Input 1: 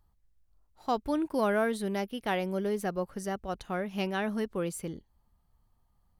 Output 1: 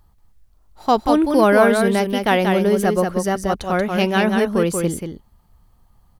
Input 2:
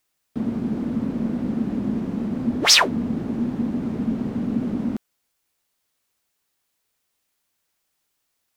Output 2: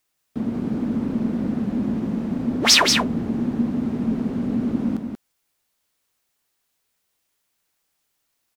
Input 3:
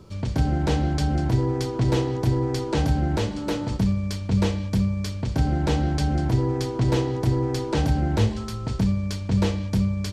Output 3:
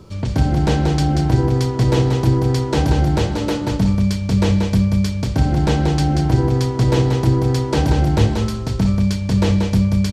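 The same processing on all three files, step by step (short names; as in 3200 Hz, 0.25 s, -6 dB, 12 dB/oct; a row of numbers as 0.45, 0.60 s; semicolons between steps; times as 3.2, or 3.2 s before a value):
echo 0.184 s -5 dB; normalise peaks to -1.5 dBFS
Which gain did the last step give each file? +13.0, 0.0, +5.0 dB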